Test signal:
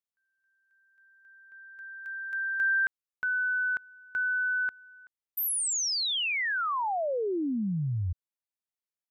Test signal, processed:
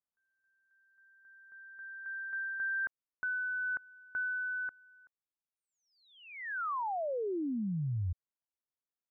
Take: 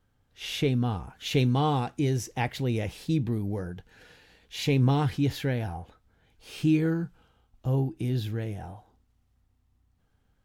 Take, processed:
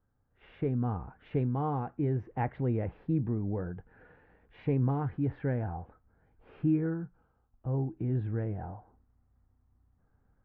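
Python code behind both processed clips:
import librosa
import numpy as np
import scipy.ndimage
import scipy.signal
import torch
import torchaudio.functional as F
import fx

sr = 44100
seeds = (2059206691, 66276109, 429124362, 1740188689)

y = scipy.signal.sosfilt(scipy.signal.butter(4, 1600.0, 'lowpass', fs=sr, output='sos'), x)
y = fx.rider(y, sr, range_db=4, speed_s=0.5)
y = F.gain(torch.from_numpy(y), -4.0).numpy()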